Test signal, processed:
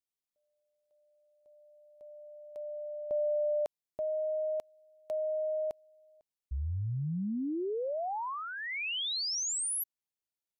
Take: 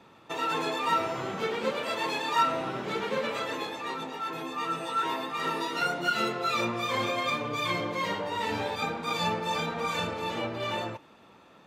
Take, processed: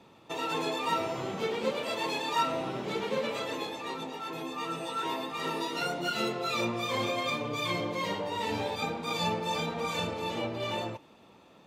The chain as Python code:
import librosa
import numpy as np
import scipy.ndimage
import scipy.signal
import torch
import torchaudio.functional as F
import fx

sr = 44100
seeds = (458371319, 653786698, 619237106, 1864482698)

y = fx.peak_eq(x, sr, hz=1500.0, db=-7.0, octaves=0.93)